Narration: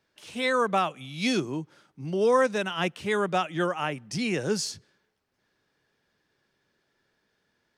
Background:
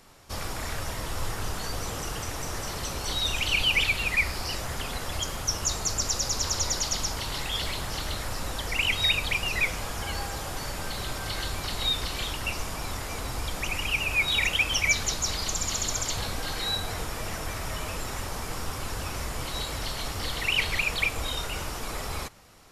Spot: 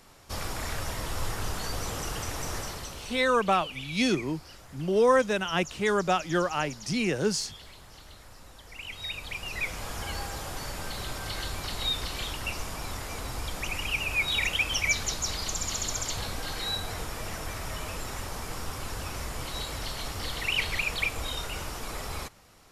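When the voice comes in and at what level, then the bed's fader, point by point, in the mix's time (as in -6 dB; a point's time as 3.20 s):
2.75 s, +0.5 dB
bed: 2.57 s -0.5 dB
3.39 s -17.5 dB
8.64 s -17.5 dB
9.92 s -2.5 dB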